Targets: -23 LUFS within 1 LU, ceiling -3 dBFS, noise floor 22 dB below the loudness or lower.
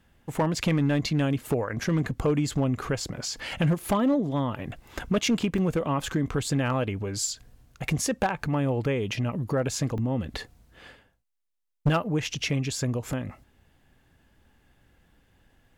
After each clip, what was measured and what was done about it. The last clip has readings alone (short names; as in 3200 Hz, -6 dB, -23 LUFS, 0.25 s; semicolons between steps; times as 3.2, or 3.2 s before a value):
clipped 0.6%; flat tops at -17.0 dBFS; dropouts 4; longest dropout 2.1 ms; loudness -27.5 LUFS; peak -17.0 dBFS; loudness target -23.0 LUFS
-> clip repair -17 dBFS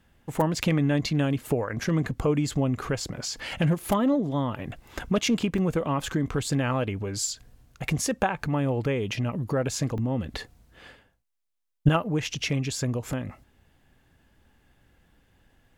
clipped 0.0%; dropouts 4; longest dropout 2.1 ms
-> interpolate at 3.51/5.58/9.98/13.13, 2.1 ms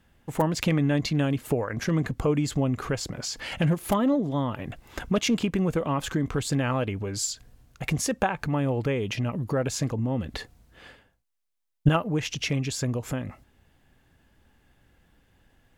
dropouts 0; loudness -27.0 LUFS; peak -8.0 dBFS; loudness target -23.0 LUFS
-> gain +4 dB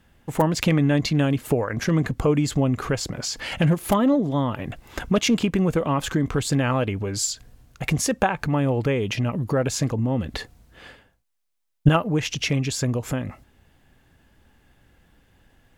loudness -23.0 LUFS; peak -4.0 dBFS; noise floor -61 dBFS